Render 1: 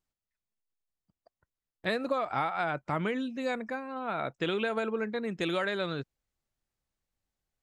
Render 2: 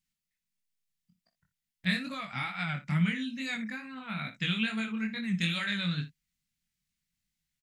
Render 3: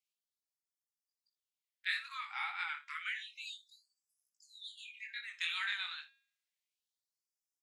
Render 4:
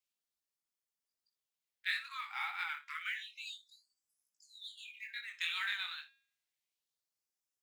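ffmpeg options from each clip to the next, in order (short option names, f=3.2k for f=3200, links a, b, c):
-filter_complex "[0:a]firequalizer=gain_entry='entry(110,0);entry(170,13);entry(370,-18);entry(2000,8)':delay=0.05:min_phase=1,flanger=delay=18:depth=5.6:speed=2.3,asplit=2[a][b];[b]aecho=0:1:27|60:0.211|0.211[c];[a][c]amix=inputs=2:normalize=0"
-af "highshelf=f=5.2k:g=-7,bandreject=f=271.9:t=h:w=4,bandreject=f=543.8:t=h:w=4,bandreject=f=815.7:t=h:w=4,bandreject=f=1.0876k:t=h:w=4,bandreject=f=1.3595k:t=h:w=4,bandreject=f=1.6314k:t=h:w=4,bandreject=f=1.9033k:t=h:w=4,bandreject=f=2.1752k:t=h:w=4,bandreject=f=2.4471k:t=h:w=4,bandreject=f=2.719k:t=h:w=4,bandreject=f=2.9909k:t=h:w=4,bandreject=f=3.2628k:t=h:w=4,bandreject=f=3.5347k:t=h:w=4,bandreject=f=3.8066k:t=h:w=4,bandreject=f=4.0785k:t=h:w=4,bandreject=f=4.3504k:t=h:w=4,bandreject=f=4.6223k:t=h:w=4,bandreject=f=4.8942k:t=h:w=4,bandreject=f=5.1661k:t=h:w=4,bandreject=f=5.438k:t=h:w=4,bandreject=f=5.7099k:t=h:w=4,bandreject=f=5.9818k:t=h:w=4,bandreject=f=6.2537k:t=h:w=4,bandreject=f=6.5256k:t=h:w=4,bandreject=f=6.7975k:t=h:w=4,bandreject=f=7.0694k:t=h:w=4,bandreject=f=7.3413k:t=h:w=4,bandreject=f=7.6132k:t=h:w=4,bandreject=f=7.8851k:t=h:w=4,bandreject=f=8.157k:t=h:w=4,bandreject=f=8.4289k:t=h:w=4,bandreject=f=8.7008k:t=h:w=4,bandreject=f=8.9727k:t=h:w=4,bandreject=f=9.2446k:t=h:w=4,bandreject=f=9.5165k:t=h:w=4,bandreject=f=9.7884k:t=h:w=4,bandreject=f=10.0603k:t=h:w=4,bandreject=f=10.3322k:t=h:w=4,afftfilt=real='re*gte(b*sr/1024,730*pow(4900/730,0.5+0.5*sin(2*PI*0.3*pts/sr)))':imag='im*gte(b*sr/1024,730*pow(4900/730,0.5+0.5*sin(2*PI*0.3*pts/sr)))':win_size=1024:overlap=0.75,volume=-2.5dB"
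-af "acrusher=bits=7:mode=log:mix=0:aa=0.000001"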